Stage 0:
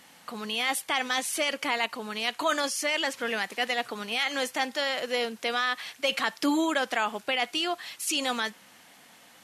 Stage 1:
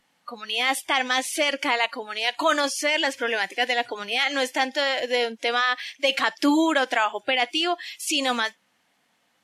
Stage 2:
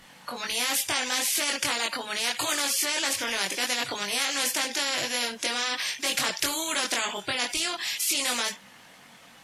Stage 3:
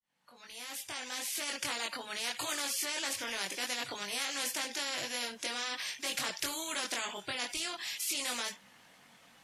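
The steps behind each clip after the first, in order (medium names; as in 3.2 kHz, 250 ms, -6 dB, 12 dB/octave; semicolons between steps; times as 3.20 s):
spectral noise reduction 18 dB; treble shelf 8.1 kHz -8.5 dB; trim +5.5 dB
chorus voices 6, 0.74 Hz, delay 21 ms, depth 1.2 ms; spectrum-flattening compressor 4:1
fade-in on the opening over 1.72 s; trim -8.5 dB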